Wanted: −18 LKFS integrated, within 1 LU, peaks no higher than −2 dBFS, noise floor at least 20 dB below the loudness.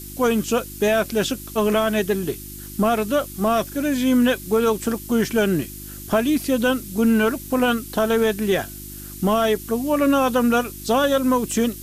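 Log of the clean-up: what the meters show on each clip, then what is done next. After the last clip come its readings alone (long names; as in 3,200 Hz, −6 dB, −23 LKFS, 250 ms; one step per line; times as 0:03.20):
mains hum 50 Hz; hum harmonics up to 350 Hz; level of the hum −37 dBFS; background noise floor −36 dBFS; target noise floor −41 dBFS; integrated loudness −21.0 LKFS; sample peak −7.0 dBFS; target loudness −18.0 LKFS
→ hum removal 50 Hz, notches 7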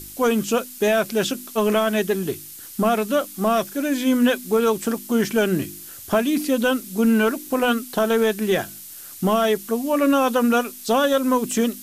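mains hum none found; background noise floor −39 dBFS; target noise floor −41 dBFS
→ noise reduction from a noise print 6 dB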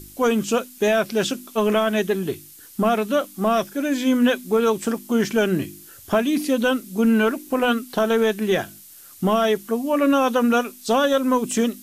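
background noise floor −45 dBFS; integrated loudness −21.0 LKFS; sample peak −7.0 dBFS; target loudness −18.0 LKFS
→ level +3 dB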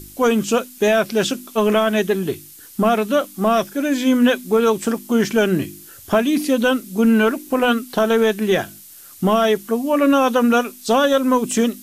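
integrated loudness −18.0 LKFS; sample peak −4.0 dBFS; background noise floor −42 dBFS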